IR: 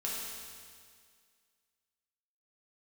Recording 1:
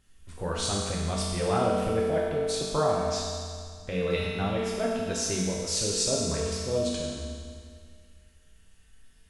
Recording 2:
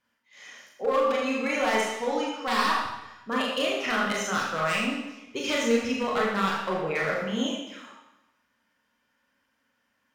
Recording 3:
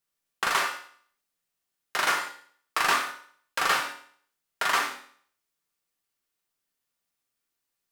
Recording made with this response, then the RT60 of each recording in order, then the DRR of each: 1; 2.0, 0.95, 0.55 s; -5.5, -4.5, 0.5 dB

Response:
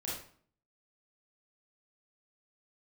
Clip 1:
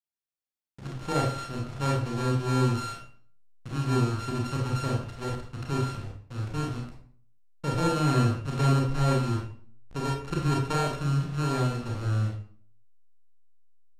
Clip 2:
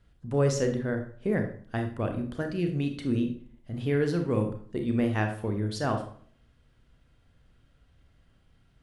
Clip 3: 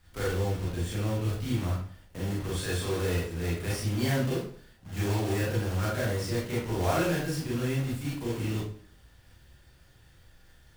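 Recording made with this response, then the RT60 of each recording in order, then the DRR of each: 3; 0.50, 0.50, 0.50 s; -1.5, 4.5, -7.0 dB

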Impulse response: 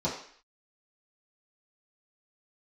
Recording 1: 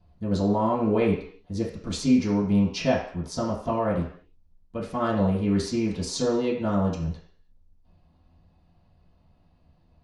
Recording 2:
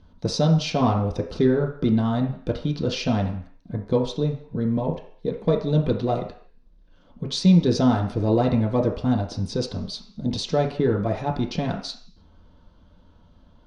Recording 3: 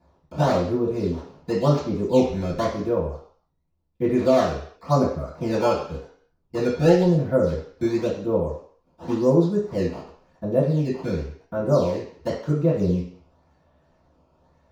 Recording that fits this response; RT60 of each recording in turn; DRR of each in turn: 1; 0.55, 0.55, 0.55 s; -9.5, -0.5, -19.0 dB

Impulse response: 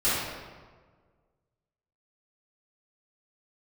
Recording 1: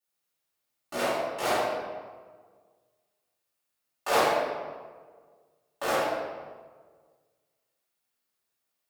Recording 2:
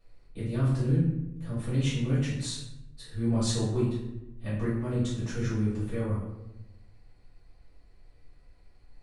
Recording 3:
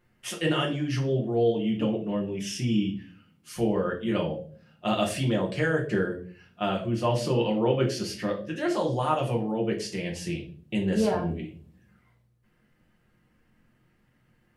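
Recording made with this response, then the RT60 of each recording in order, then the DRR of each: 1; 1.5, 0.90, 0.45 s; -15.0, -11.5, -1.0 dB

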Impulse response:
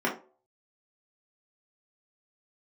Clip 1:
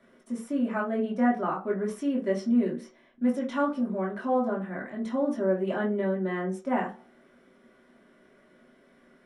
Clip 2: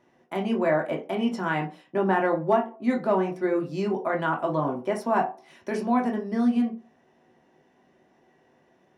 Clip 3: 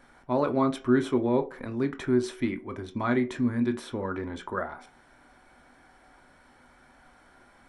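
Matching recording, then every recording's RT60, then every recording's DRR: 1; 0.40, 0.40, 0.40 s; -5.0, 0.5, 6.5 dB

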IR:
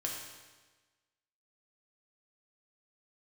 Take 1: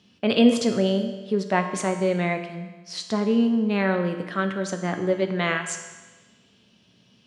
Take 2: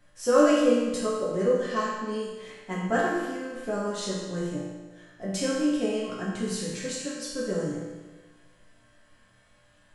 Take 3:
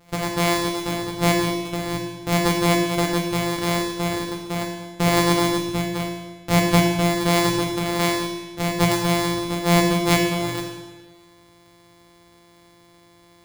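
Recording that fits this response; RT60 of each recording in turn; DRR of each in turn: 3; 1.3, 1.3, 1.3 s; 5.0, -8.0, -2.0 dB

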